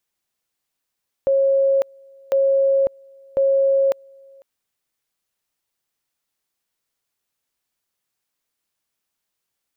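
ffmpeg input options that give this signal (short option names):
-f lavfi -i "aevalsrc='pow(10,(-13.5-30*gte(mod(t,1.05),0.55))/20)*sin(2*PI*545*t)':d=3.15:s=44100"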